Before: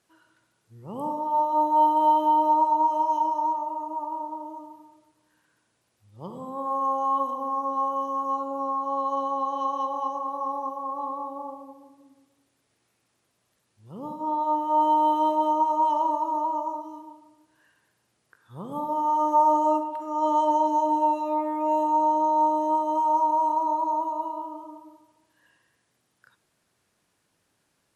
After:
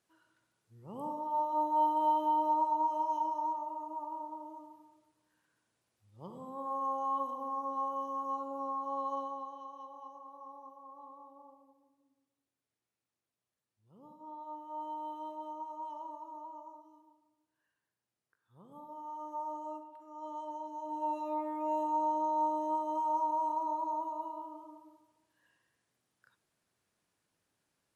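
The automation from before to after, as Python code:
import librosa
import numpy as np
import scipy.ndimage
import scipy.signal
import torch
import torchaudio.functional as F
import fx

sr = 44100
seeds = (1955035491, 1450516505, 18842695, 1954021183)

y = fx.gain(x, sr, db=fx.line((9.14, -9.0), (9.65, -20.0), (20.76, -20.0), (21.17, -9.5)))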